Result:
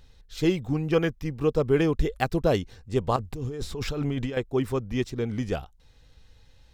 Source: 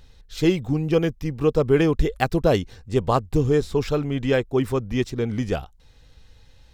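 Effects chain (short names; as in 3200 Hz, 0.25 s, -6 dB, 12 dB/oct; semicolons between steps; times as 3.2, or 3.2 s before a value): 0.67–1.29 dynamic EQ 1500 Hz, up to +7 dB, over -40 dBFS, Q 0.85; 3.16–4.37 negative-ratio compressor -26 dBFS, ratio -1; gain -4 dB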